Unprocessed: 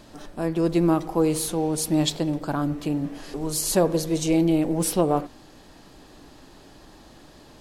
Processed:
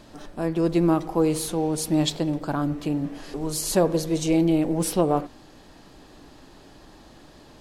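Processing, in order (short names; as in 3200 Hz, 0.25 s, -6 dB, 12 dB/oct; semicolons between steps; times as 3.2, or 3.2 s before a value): high shelf 7200 Hz -4 dB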